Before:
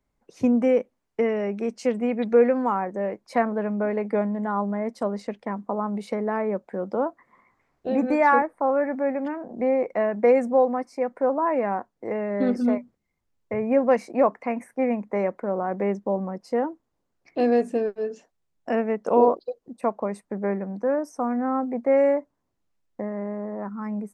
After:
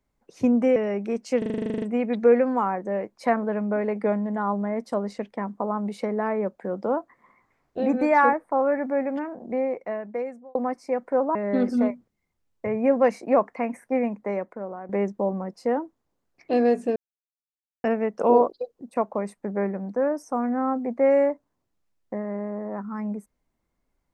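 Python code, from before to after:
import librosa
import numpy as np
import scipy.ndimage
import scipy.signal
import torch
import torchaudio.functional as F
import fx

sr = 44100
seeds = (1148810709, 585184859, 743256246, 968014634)

y = fx.edit(x, sr, fx.cut(start_s=0.76, length_s=0.53),
    fx.stutter(start_s=1.91, slice_s=0.04, count=12),
    fx.fade_out_span(start_s=9.26, length_s=1.38),
    fx.cut(start_s=11.44, length_s=0.78),
    fx.fade_out_to(start_s=14.82, length_s=0.94, floor_db=-13.0),
    fx.silence(start_s=17.83, length_s=0.88), tone=tone)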